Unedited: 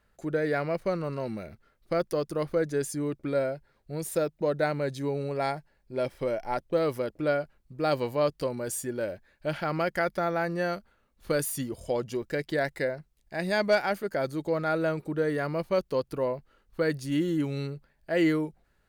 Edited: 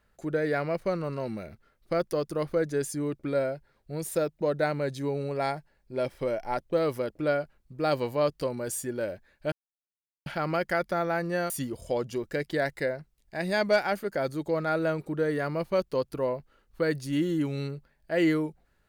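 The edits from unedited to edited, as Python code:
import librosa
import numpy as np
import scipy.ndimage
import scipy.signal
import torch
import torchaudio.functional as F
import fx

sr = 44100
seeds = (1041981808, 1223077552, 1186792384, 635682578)

y = fx.edit(x, sr, fx.insert_silence(at_s=9.52, length_s=0.74),
    fx.cut(start_s=10.76, length_s=0.73), tone=tone)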